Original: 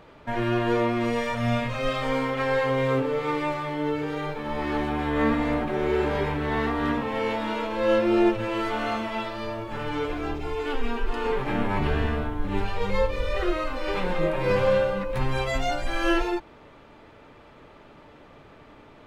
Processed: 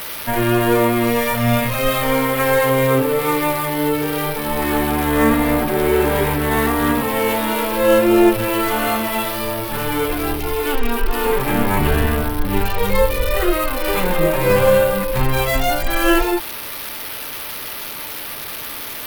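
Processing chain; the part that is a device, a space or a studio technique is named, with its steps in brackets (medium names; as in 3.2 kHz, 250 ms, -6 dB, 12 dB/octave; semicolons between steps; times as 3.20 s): budget class-D amplifier (dead-time distortion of 0.06 ms; zero-crossing glitches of -20.5 dBFS); trim +8 dB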